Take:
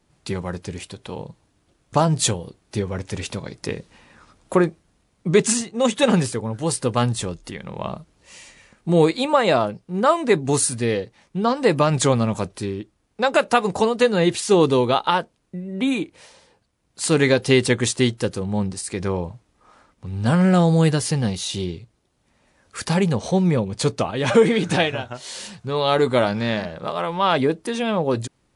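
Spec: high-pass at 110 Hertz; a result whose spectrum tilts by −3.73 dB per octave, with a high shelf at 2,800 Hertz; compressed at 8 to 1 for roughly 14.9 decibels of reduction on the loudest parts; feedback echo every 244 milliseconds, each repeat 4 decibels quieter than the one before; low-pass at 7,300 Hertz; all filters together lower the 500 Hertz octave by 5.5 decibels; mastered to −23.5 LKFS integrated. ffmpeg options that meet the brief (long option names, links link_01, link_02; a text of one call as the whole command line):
ffmpeg -i in.wav -af "highpass=110,lowpass=7300,equalizer=frequency=500:width_type=o:gain=-7,highshelf=frequency=2800:gain=8,acompressor=threshold=-29dB:ratio=8,aecho=1:1:244|488|732|976|1220|1464|1708|1952|2196:0.631|0.398|0.25|0.158|0.0994|0.0626|0.0394|0.0249|0.0157,volume=8dB" out.wav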